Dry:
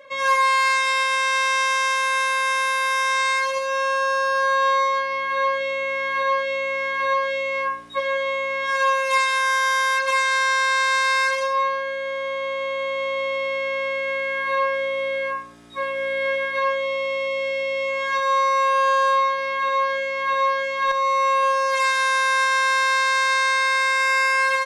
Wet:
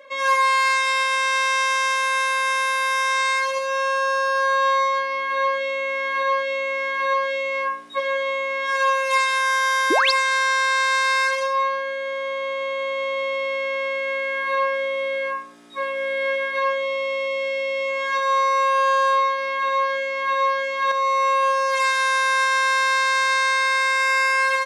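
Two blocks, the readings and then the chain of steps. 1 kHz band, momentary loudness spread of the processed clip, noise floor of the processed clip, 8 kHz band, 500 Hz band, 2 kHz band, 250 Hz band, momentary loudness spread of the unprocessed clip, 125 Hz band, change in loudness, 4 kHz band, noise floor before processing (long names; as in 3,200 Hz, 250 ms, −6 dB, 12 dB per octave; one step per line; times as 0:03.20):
0.0 dB, 6 LU, −27 dBFS, 0.0 dB, 0.0 dB, 0.0 dB, +6.0 dB, 6 LU, can't be measured, 0.0 dB, +0.5 dB, −27 dBFS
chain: high-pass filter 210 Hz 24 dB per octave
sound drawn into the spectrogram rise, 0:09.90–0:10.12, 270–5,800 Hz −19 dBFS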